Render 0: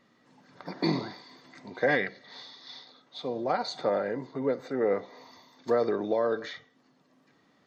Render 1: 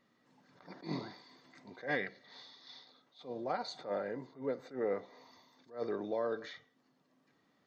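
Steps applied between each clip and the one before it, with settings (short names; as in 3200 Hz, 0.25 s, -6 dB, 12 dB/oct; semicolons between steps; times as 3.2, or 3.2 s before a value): attack slew limiter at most 190 dB/s; gain -8 dB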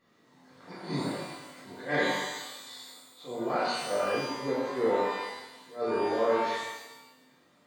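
shimmer reverb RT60 1 s, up +12 st, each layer -8 dB, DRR -8 dB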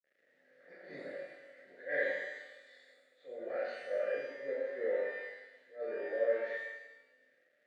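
requantised 10-bit, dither none; double band-pass 990 Hz, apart 1.7 oct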